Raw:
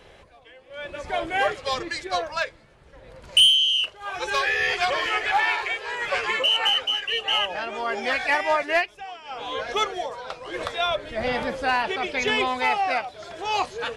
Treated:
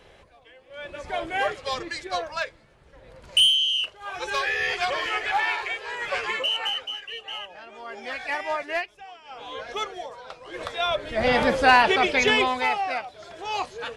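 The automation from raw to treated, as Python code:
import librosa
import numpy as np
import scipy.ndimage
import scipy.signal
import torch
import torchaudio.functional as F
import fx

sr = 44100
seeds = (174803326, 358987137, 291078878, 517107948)

y = fx.gain(x, sr, db=fx.line((6.26, -2.5), (7.56, -14.0), (8.4, -6.0), (10.45, -6.0), (11.49, 7.0), (11.99, 7.0), (12.89, -4.0)))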